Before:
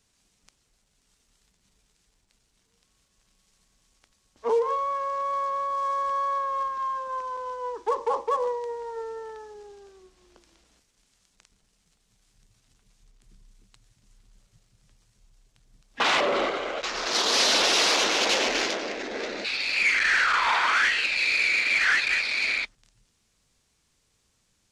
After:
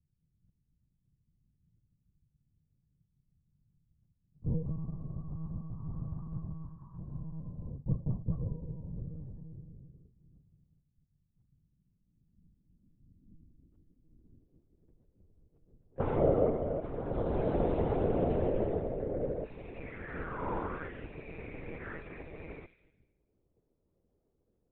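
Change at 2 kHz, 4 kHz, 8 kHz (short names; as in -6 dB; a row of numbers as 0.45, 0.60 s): -27.0 dB, under -35 dB, under -40 dB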